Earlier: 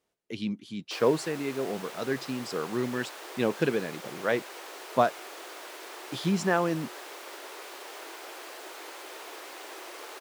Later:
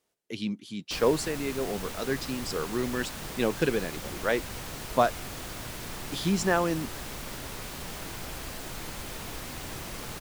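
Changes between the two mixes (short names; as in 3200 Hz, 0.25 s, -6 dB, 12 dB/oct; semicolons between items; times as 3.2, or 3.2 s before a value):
background: remove elliptic high-pass 350 Hz, stop band 60 dB; master: add high shelf 4800 Hz +7 dB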